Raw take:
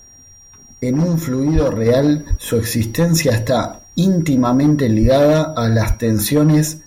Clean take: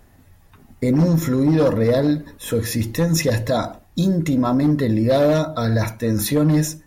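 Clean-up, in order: notch 5700 Hz, Q 30; de-plosive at 1.54/2.29/5.01/5.87; gain 0 dB, from 1.86 s -4 dB

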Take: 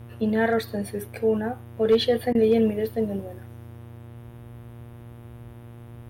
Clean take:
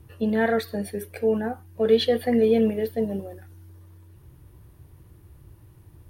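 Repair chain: clip repair -11.5 dBFS; de-hum 118.2 Hz, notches 32; interpolate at 2.33, 18 ms

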